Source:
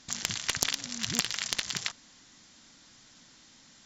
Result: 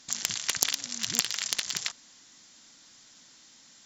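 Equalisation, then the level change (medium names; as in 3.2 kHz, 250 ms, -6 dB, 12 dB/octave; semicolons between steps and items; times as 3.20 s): RIAA curve recording; tilt EQ -2 dB/octave; -1.5 dB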